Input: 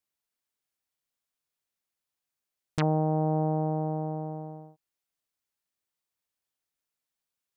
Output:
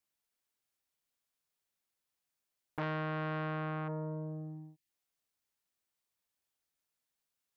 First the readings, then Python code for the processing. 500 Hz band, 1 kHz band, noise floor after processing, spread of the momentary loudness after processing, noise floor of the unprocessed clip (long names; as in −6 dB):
−10.0 dB, −9.0 dB, below −85 dBFS, 11 LU, below −85 dBFS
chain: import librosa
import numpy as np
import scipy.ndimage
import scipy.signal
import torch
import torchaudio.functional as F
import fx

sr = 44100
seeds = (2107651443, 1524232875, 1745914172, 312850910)

y = fx.spec_box(x, sr, start_s=3.88, length_s=1.01, low_hz=360.0, high_hz=1700.0, gain_db=-16)
y = fx.transformer_sat(y, sr, knee_hz=2400.0)